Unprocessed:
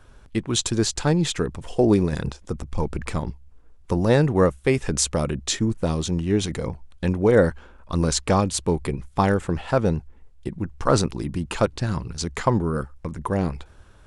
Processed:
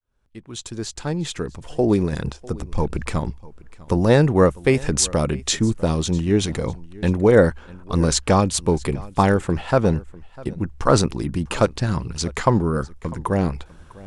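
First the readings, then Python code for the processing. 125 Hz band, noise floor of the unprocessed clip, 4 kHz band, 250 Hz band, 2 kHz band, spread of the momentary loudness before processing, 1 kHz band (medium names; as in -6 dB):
+2.5 dB, -50 dBFS, +1.0 dB, +2.0 dB, +2.5 dB, 12 LU, +3.0 dB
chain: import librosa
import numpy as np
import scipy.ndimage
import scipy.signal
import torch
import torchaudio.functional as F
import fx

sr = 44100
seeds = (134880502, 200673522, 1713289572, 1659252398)

y = fx.fade_in_head(x, sr, length_s=2.8)
y = y + 10.0 ** (-21.5 / 20.0) * np.pad(y, (int(649 * sr / 1000.0), 0))[:len(y)]
y = y * librosa.db_to_amplitude(3.0)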